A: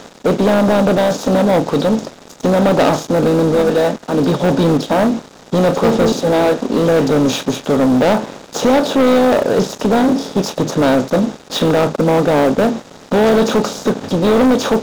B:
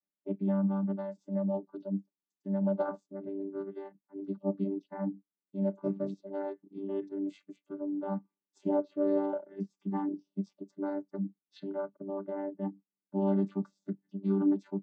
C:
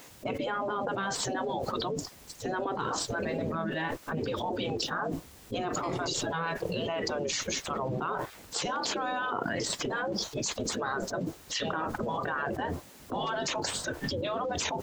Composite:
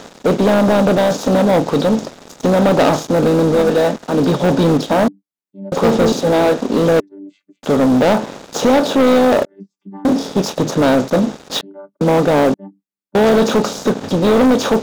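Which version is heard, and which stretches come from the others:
A
5.08–5.72 from B
7–7.63 from B
9.45–10.05 from B
11.61–12.01 from B
12.54–13.15 from B
not used: C

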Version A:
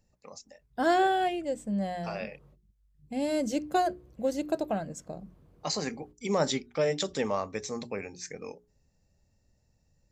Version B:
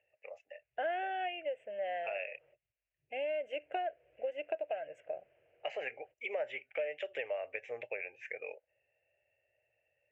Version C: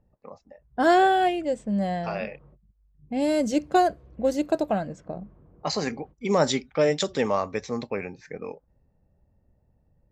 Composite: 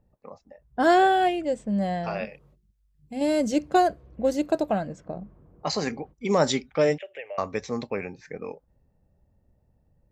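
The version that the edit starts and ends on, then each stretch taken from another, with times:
C
2.25–3.21 from A
6.98–7.38 from B

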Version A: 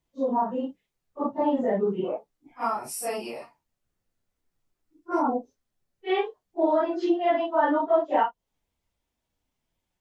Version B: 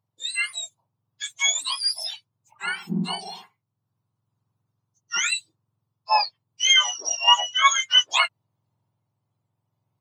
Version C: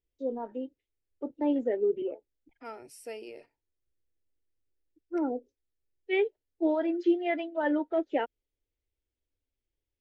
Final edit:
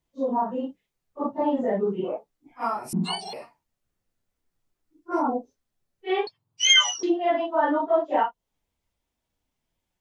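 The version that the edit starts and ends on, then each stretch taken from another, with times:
A
2.93–3.33 from B
6.27–7.03 from B
not used: C

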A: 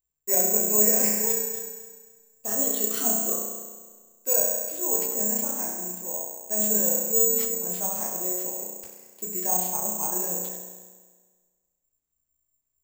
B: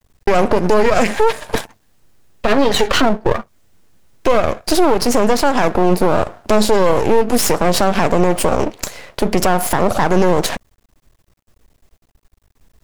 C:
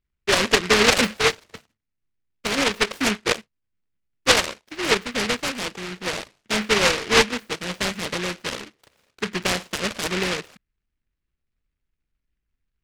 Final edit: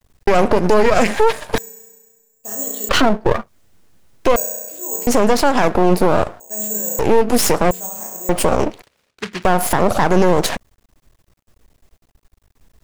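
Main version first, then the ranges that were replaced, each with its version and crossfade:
B
1.58–2.89 from A
4.36–5.07 from A
6.4–6.99 from A
7.71–8.29 from A
8.82–9.45 from C

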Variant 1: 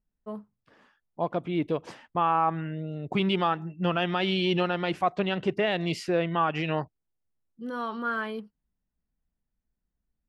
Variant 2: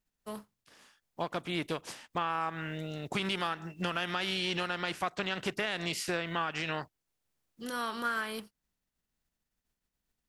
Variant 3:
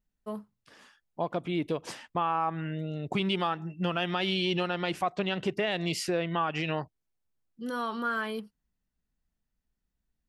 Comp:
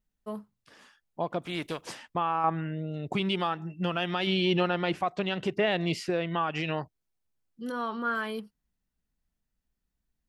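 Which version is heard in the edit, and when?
3
1.42–1.86 from 2
2.44–2.94 from 1
4.27–5.03 from 1
5.57–6.1 from 1
7.72–8.15 from 1

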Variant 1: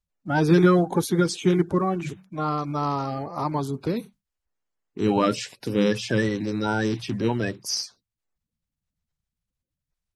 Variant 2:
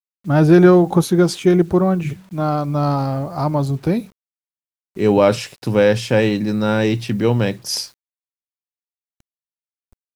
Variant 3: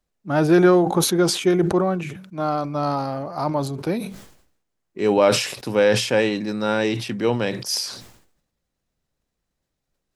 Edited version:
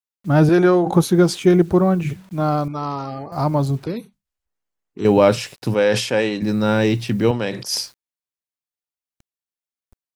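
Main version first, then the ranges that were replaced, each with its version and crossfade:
2
0.49–0.93 from 3
2.68–3.32 from 1
3.84–5.05 from 1
5.74–6.42 from 3
7.31–7.72 from 3

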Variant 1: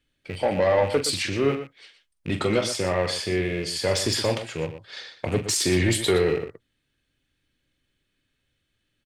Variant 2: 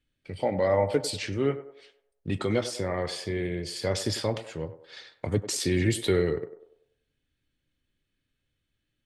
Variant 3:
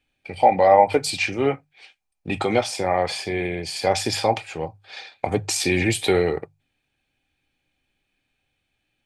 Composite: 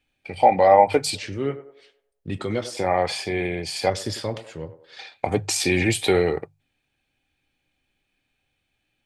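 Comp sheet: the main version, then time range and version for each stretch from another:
3
1.15–2.77 from 2
3.9–4.99 from 2
not used: 1

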